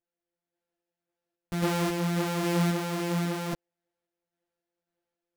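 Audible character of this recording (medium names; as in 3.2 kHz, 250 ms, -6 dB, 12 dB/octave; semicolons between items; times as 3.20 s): a buzz of ramps at a fixed pitch in blocks of 256 samples; random-step tremolo 3.7 Hz; a shimmering, thickened sound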